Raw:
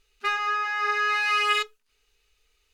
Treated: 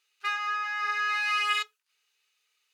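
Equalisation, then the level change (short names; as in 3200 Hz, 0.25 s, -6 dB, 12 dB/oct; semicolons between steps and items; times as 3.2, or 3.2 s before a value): HPF 950 Hz 12 dB/oct; -3.0 dB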